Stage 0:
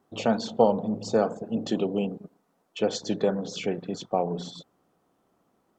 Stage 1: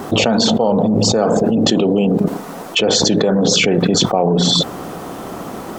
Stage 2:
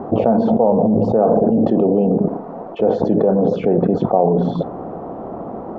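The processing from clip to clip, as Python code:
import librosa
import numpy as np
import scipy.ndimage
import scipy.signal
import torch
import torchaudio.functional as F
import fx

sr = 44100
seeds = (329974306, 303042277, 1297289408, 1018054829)

y1 = fx.env_flatten(x, sr, amount_pct=100)
y1 = F.gain(torch.from_numpy(y1), 1.0).numpy()
y2 = fx.lowpass_res(y1, sr, hz=720.0, q=1.5)
y2 = fx.rev_fdn(y2, sr, rt60_s=0.34, lf_ratio=1.0, hf_ratio=0.7, size_ms=26.0, drr_db=18.5)
y2 = F.gain(torch.from_numpy(y2), -2.0).numpy()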